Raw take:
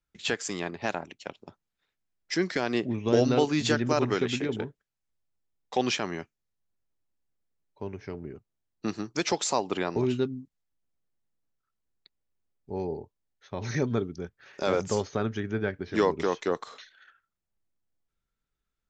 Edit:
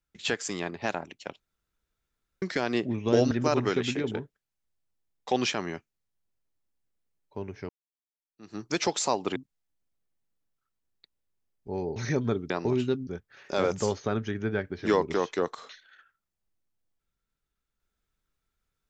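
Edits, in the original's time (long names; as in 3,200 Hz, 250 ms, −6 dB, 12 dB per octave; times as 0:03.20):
0:01.40–0:02.42: fill with room tone
0:03.31–0:03.76: remove
0:08.14–0:09.05: fade in exponential
0:09.81–0:10.38: move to 0:14.16
0:12.98–0:13.62: remove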